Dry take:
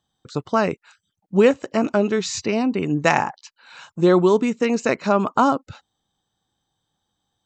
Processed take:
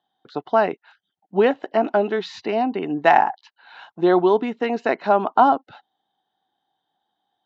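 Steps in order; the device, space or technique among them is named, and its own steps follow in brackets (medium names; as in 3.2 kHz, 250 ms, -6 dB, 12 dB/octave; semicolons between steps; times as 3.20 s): phone earpiece (cabinet simulation 360–3400 Hz, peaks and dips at 520 Hz -8 dB, 740 Hz +8 dB, 1.2 kHz -8 dB, 2.4 kHz -10 dB); trim +3 dB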